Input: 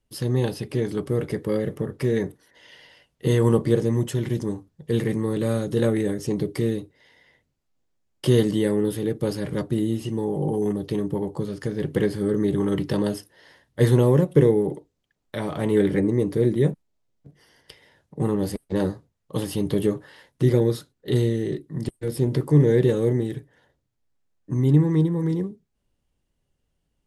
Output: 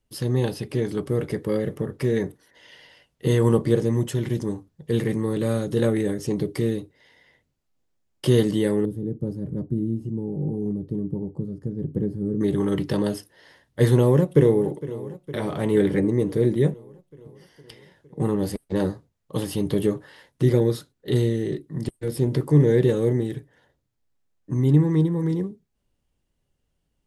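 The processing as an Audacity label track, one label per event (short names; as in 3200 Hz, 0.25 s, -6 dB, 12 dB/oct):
8.850000	12.410000	EQ curve 230 Hz 0 dB, 2700 Hz -30 dB, 8900 Hz -21 dB
13.960000	14.700000	echo throw 0.46 s, feedback 70%, level -16 dB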